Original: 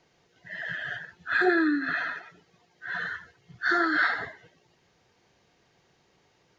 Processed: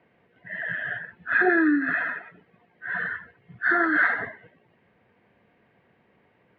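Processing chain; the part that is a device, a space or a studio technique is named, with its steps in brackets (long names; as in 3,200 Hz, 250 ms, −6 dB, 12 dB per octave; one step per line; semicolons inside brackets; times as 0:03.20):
bass cabinet (loudspeaker in its box 77–2,300 Hz, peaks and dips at 84 Hz −3 dB, 150 Hz −5 dB, 220 Hz +5 dB, 360 Hz −5 dB, 830 Hz −5 dB, 1,300 Hz −5 dB)
level +5.5 dB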